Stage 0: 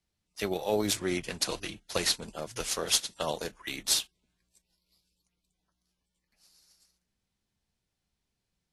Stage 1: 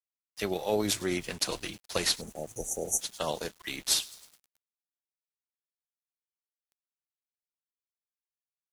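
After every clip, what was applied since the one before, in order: thin delay 0.105 s, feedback 64%, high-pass 3400 Hz, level -19 dB; spectral delete 2.21–3.01, 870–5700 Hz; sample gate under -48.5 dBFS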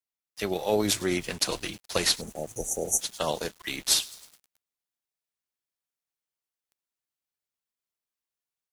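AGC gain up to 3.5 dB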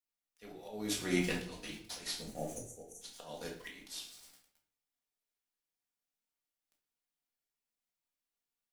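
flange 0.44 Hz, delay 3.2 ms, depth 2.5 ms, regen +89%; auto swell 0.633 s; reverb RT60 0.55 s, pre-delay 4 ms, DRR -1.5 dB; gain -1 dB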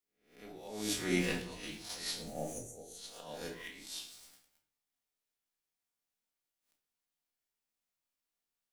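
spectral swells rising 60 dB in 0.48 s; gain -1 dB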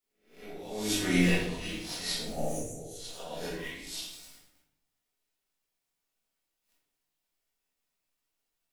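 shoebox room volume 120 m³, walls mixed, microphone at 1.5 m

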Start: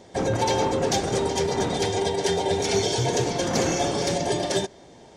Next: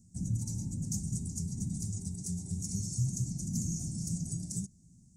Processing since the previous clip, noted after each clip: elliptic band-stop 190–7300 Hz, stop band 40 dB; gain -2.5 dB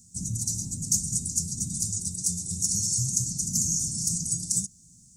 EQ curve 680 Hz 0 dB, 1800 Hz -4 dB, 3300 Hz +15 dB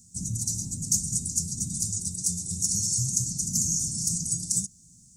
nothing audible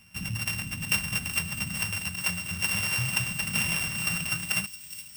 sample sorter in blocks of 16 samples; thin delay 0.417 s, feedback 68%, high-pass 4000 Hz, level -10 dB; gain -1.5 dB

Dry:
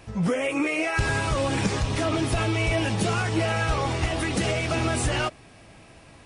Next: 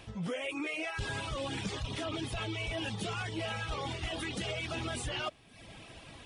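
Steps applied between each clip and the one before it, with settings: reverb removal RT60 0.71 s; bell 3300 Hz +9 dB 0.56 oct; reverse; compressor 4:1, threshold -36 dBFS, peak gain reduction 14.5 dB; reverse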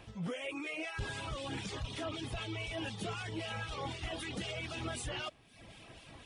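harmonic tremolo 3.9 Hz, depth 50%, crossover 2200 Hz; gain -1 dB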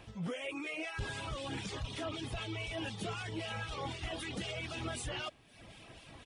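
speakerphone echo 0.39 s, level -28 dB

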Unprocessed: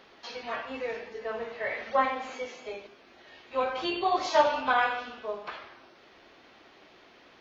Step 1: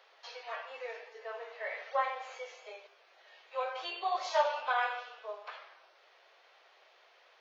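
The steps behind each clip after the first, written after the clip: steep high-pass 480 Hz 36 dB/oct; gain -6 dB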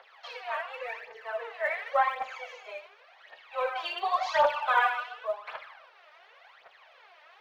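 three-band isolator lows -15 dB, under 540 Hz, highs -12 dB, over 3200 Hz; phaser 0.9 Hz, delay 3.4 ms, feedback 69%; gain +6 dB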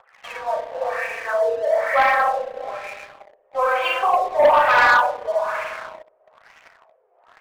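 spring tank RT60 2 s, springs 32/58 ms, chirp 35 ms, DRR -1 dB; LFO low-pass sine 1.1 Hz 440–2500 Hz; sample leveller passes 2; gain -1.5 dB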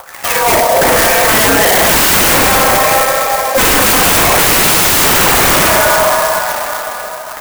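plate-style reverb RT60 3.9 s, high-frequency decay 0.9×, DRR 2.5 dB; sine folder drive 18 dB, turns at -6 dBFS; clock jitter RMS 0.071 ms

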